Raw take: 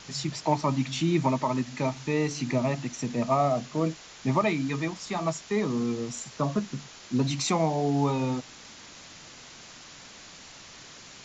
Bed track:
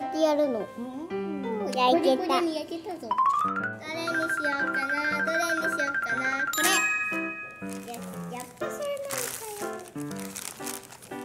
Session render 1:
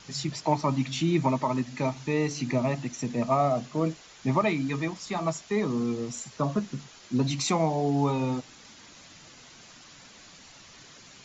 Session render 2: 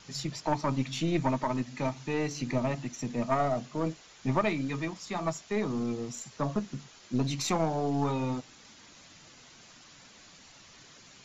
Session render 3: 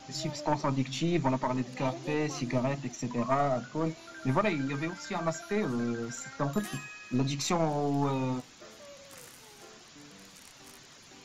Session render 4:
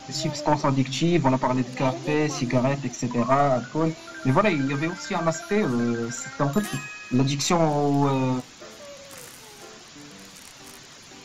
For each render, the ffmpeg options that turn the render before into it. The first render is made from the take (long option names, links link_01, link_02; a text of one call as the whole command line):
ffmpeg -i in.wav -af "afftdn=noise_reduction=6:noise_floor=-48" out.wav
ffmpeg -i in.wav -af "aeval=exprs='(tanh(5.01*val(0)+0.65)-tanh(0.65))/5.01':channel_layout=same" out.wav
ffmpeg -i in.wav -i bed.wav -filter_complex "[1:a]volume=-19.5dB[link_01];[0:a][link_01]amix=inputs=2:normalize=0" out.wav
ffmpeg -i in.wav -af "volume=7.5dB" out.wav